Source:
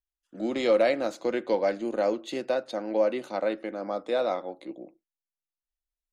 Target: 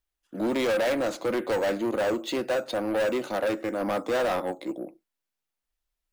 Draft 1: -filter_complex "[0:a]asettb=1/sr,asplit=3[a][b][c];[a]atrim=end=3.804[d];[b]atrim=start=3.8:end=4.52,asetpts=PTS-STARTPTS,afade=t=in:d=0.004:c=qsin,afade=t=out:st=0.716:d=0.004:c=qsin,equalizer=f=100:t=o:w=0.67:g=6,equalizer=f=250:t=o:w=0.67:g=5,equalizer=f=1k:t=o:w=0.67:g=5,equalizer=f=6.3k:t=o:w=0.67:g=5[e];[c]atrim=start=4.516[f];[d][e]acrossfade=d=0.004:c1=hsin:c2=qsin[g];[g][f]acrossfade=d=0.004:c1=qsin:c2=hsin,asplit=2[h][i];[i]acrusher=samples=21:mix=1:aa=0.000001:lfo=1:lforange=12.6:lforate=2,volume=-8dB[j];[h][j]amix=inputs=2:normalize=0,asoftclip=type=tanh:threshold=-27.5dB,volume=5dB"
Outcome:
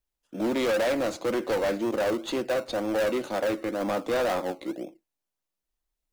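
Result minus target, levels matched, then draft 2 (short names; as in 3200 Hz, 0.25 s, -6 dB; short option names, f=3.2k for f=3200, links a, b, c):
decimation with a swept rate: distortion +14 dB
-filter_complex "[0:a]asettb=1/sr,asplit=3[a][b][c];[a]atrim=end=3.804[d];[b]atrim=start=3.8:end=4.52,asetpts=PTS-STARTPTS,afade=t=in:d=0.004:c=qsin,afade=t=out:st=0.716:d=0.004:c=qsin,equalizer=f=100:t=o:w=0.67:g=6,equalizer=f=250:t=o:w=0.67:g=5,equalizer=f=1k:t=o:w=0.67:g=5,equalizer=f=6.3k:t=o:w=0.67:g=5[e];[c]atrim=start=4.516[f];[d][e]acrossfade=d=0.004:c1=hsin:c2=qsin[g];[g][f]acrossfade=d=0.004:c1=qsin:c2=hsin,asplit=2[h][i];[i]acrusher=samples=5:mix=1:aa=0.000001:lfo=1:lforange=3:lforate=2,volume=-8dB[j];[h][j]amix=inputs=2:normalize=0,asoftclip=type=tanh:threshold=-27.5dB,volume=5dB"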